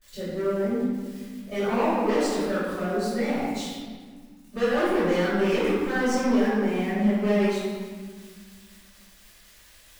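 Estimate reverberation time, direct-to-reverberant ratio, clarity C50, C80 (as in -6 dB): 1.6 s, -16.0 dB, -2.5 dB, 0.0 dB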